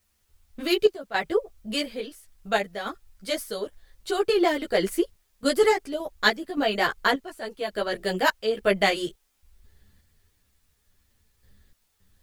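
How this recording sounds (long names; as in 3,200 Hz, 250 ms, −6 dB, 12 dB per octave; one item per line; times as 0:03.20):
sample-and-hold tremolo, depth 95%
a quantiser's noise floor 12 bits, dither triangular
a shimmering, thickened sound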